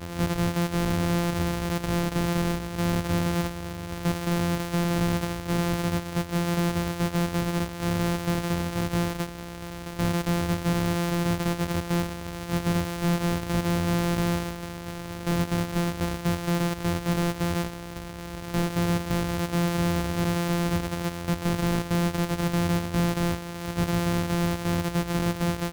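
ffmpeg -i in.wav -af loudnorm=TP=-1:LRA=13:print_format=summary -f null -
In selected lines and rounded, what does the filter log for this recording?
Input Integrated:    -27.1 LUFS
Input True Peak:     -18.0 dBTP
Input LRA:             1.2 LU
Input Threshold:     -37.2 LUFS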